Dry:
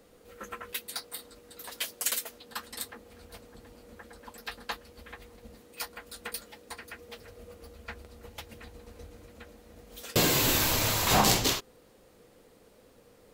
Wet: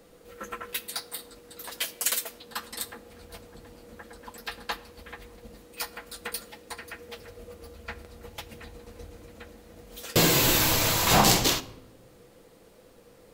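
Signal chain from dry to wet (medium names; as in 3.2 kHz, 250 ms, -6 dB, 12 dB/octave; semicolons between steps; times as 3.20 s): simulated room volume 3700 m³, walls furnished, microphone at 0.72 m; trim +3 dB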